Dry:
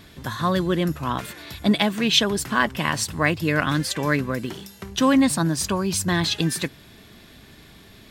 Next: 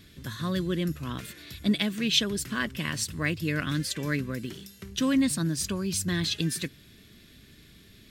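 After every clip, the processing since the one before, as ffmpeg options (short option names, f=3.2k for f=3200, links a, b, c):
-af "equalizer=f=840:t=o:w=1.1:g=-15,volume=-4.5dB"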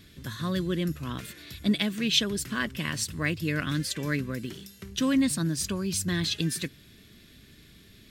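-af anull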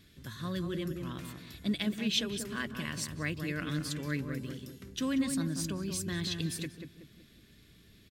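-filter_complex "[0:a]asplit=2[a][b];[b]adelay=187,lowpass=f=1.1k:p=1,volume=-4.5dB,asplit=2[c][d];[d]adelay=187,lowpass=f=1.1k:p=1,volume=0.43,asplit=2[e][f];[f]adelay=187,lowpass=f=1.1k:p=1,volume=0.43,asplit=2[g][h];[h]adelay=187,lowpass=f=1.1k:p=1,volume=0.43,asplit=2[i][j];[j]adelay=187,lowpass=f=1.1k:p=1,volume=0.43[k];[a][c][e][g][i][k]amix=inputs=6:normalize=0,volume=-7dB"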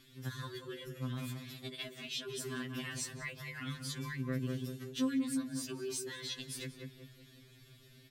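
-af "acompressor=threshold=-36dB:ratio=6,afftfilt=real='re*2.45*eq(mod(b,6),0)':imag='im*2.45*eq(mod(b,6),0)':win_size=2048:overlap=0.75,volume=3dB"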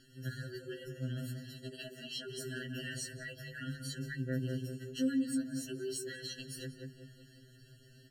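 -af "bandreject=f=50:t=h:w=6,bandreject=f=100:t=h:w=6,bandreject=f=150:t=h:w=6,bandreject=f=200:t=h:w=6,bandreject=f=250:t=h:w=6,bandreject=f=300:t=h:w=6,bandreject=f=350:t=h:w=6,bandreject=f=400:t=h:w=6,afftfilt=real='re*eq(mod(floor(b*sr/1024/660),2),0)':imag='im*eq(mod(floor(b*sr/1024/660),2),0)':win_size=1024:overlap=0.75,volume=1.5dB"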